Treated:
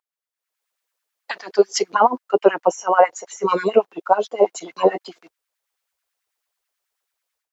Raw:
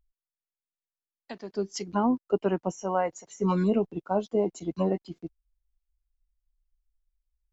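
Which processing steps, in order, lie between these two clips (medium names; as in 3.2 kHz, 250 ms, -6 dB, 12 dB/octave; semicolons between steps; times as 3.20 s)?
LFO high-pass sine 9.2 Hz 450–1800 Hz; level rider gain up to 16 dB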